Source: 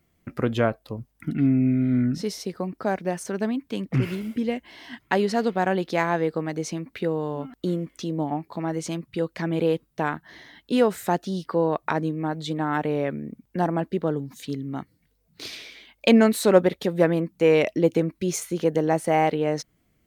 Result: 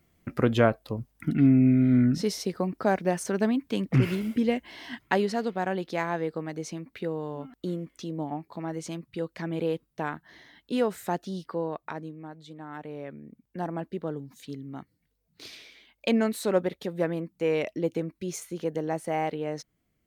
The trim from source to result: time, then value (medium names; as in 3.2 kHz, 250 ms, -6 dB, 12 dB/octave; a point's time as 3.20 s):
4.92 s +1 dB
5.42 s -6 dB
11.36 s -6 dB
12.48 s -17 dB
13.76 s -8 dB